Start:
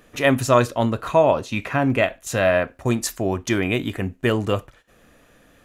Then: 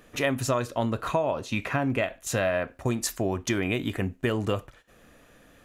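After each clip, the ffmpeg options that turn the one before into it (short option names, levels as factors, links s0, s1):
-af "acompressor=threshold=0.0891:ratio=6,volume=0.841"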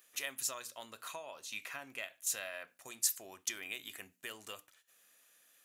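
-af "aderivative,bandreject=f=60:t=h:w=6,bandreject=f=120:t=h:w=6,bandreject=f=180:t=h:w=6,bandreject=f=240:t=h:w=6,bandreject=f=300:t=h:w=6,volume=0.891"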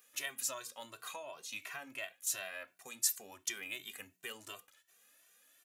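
-filter_complex "[0:a]asplit=2[s0][s1];[s1]adelay=2.1,afreqshift=2.8[s2];[s0][s2]amix=inputs=2:normalize=1,volume=1.41"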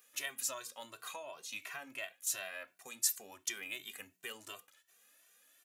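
-af "lowshelf=f=93:g=-6.5"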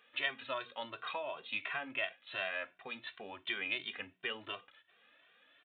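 -af "aresample=8000,aresample=44100,volume=2.11"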